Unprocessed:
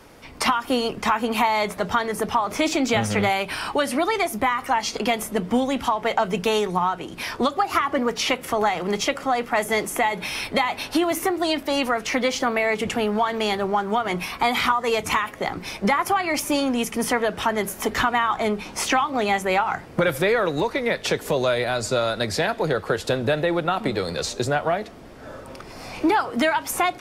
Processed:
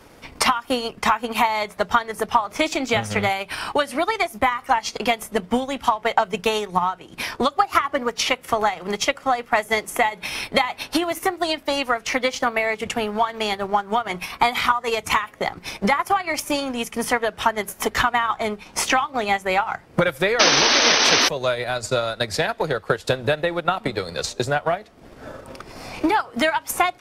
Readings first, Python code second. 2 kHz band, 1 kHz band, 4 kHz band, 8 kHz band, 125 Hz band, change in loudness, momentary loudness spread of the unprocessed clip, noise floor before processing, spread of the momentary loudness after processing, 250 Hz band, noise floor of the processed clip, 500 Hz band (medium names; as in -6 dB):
+2.5 dB, +1.5 dB, +4.5 dB, +4.0 dB, -1.5 dB, +1.5 dB, 5 LU, -41 dBFS, 6 LU, -2.5 dB, -48 dBFS, -0.5 dB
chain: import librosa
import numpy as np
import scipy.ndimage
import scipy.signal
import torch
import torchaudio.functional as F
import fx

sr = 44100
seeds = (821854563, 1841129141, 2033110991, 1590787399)

y = fx.dynamic_eq(x, sr, hz=280.0, q=0.84, threshold_db=-37.0, ratio=4.0, max_db=-5)
y = fx.spec_paint(y, sr, seeds[0], shape='noise', start_s=20.39, length_s=0.9, low_hz=220.0, high_hz=6300.0, level_db=-17.0)
y = fx.transient(y, sr, attack_db=6, sustain_db=-8)